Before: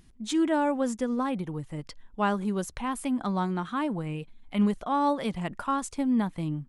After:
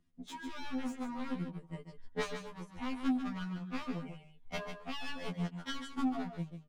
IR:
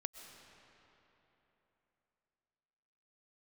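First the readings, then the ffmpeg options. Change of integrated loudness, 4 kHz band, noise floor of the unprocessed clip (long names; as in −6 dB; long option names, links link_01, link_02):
−11.0 dB, −4.0 dB, −54 dBFS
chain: -filter_complex "[0:a]acrossover=split=180[link_01][link_02];[link_02]aeval=exprs='0.0355*(abs(mod(val(0)/0.0355+3,4)-2)-1)':channel_layout=same[link_03];[link_01][link_03]amix=inputs=2:normalize=0,acompressor=threshold=-44dB:ratio=12,agate=range=-29dB:threshold=-44dB:ratio=16:detection=peak,dynaudnorm=framelen=110:gausssize=11:maxgain=5.5dB,highshelf=frequency=7800:gain=-11.5,aecho=1:1:4.2:0.38,aecho=1:1:144:0.398,afftfilt=real='re*2*eq(mod(b,4),0)':imag='im*2*eq(mod(b,4),0)':win_size=2048:overlap=0.75,volume=13dB"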